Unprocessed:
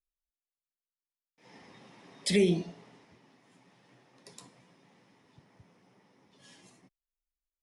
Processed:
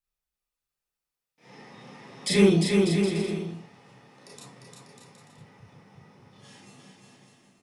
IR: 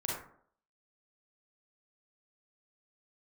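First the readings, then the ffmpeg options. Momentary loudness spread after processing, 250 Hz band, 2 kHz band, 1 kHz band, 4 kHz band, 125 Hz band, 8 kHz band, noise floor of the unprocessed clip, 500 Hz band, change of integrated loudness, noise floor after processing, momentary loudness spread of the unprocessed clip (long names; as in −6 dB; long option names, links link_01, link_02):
15 LU, +9.5 dB, +8.0 dB, +12.5 dB, +6.5 dB, +9.5 dB, +6.5 dB, below −85 dBFS, +7.5 dB, +5.5 dB, below −85 dBFS, 13 LU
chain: -filter_complex "[0:a]asoftclip=type=hard:threshold=-19dB,aecho=1:1:350|595|766.5|886.6|970.6:0.631|0.398|0.251|0.158|0.1[link_01];[1:a]atrim=start_sample=2205,atrim=end_sample=3969,asetrate=57330,aresample=44100[link_02];[link_01][link_02]afir=irnorm=-1:irlink=0,volume=5.5dB"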